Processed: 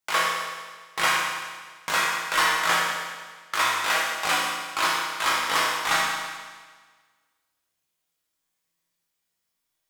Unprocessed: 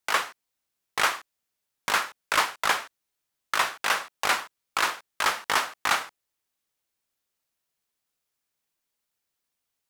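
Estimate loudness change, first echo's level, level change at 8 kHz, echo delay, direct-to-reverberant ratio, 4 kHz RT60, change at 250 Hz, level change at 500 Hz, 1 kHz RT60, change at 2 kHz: +2.5 dB, no echo, +3.5 dB, no echo, -5.5 dB, 1.5 s, +4.5 dB, +2.5 dB, 1.5 s, +3.5 dB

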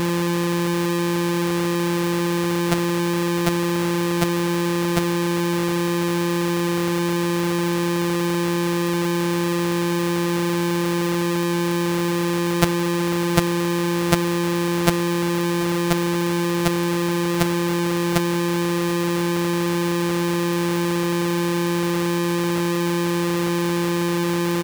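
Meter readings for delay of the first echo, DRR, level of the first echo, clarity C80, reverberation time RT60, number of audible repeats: 734 ms, no reverb, -17.0 dB, no reverb, no reverb, 1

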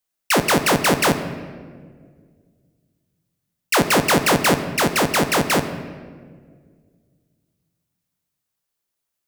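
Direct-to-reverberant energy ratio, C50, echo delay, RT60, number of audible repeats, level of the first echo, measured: 8.5 dB, 10.5 dB, no echo, 1.8 s, no echo, no echo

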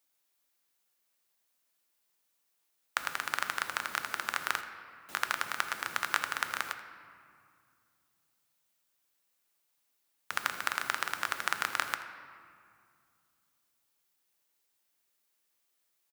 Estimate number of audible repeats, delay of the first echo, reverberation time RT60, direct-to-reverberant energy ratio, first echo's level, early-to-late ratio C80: 1, 82 ms, 2.2 s, 7.5 dB, -17.5 dB, 10.0 dB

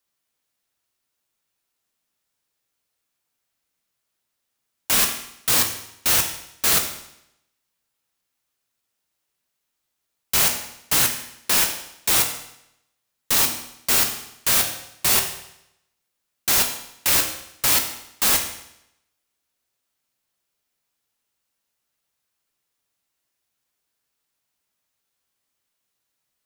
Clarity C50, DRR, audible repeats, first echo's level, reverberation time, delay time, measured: 8.0 dB, 3.5 dB, no echo, no echo, 0.80 s, no echo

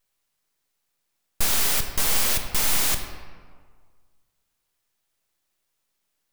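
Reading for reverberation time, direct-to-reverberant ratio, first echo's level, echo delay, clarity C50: 1.7 s, 5.5 dB, no echo, no echo, 7.0 dB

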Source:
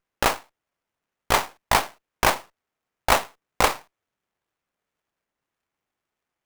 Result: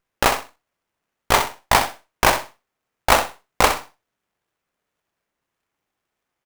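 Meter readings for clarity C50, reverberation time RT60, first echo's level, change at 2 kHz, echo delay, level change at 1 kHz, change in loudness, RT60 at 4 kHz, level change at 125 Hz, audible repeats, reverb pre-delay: no reverb, no reverb, -9.0 dB, +4.0 dB, 64 ms, +4.0 dB, +3.5 dB, no reverb, +4.0 dB, 2, no reverb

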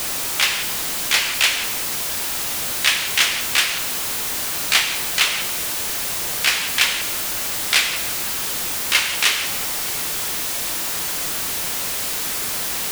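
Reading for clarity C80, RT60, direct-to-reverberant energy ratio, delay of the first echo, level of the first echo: 10.5 dB, 1.4 s, 7.0 dB, no echo, no echo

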